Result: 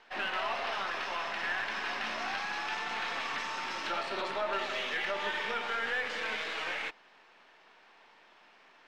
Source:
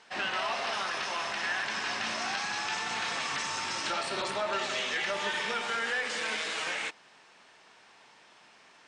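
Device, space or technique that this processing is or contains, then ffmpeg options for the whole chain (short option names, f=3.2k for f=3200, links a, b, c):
crystal radio: -af "highpass=220,lowpass=3.5k,aeval=exprs='if(lt(val(0),0),0.708*val(0),val(0))':c=same"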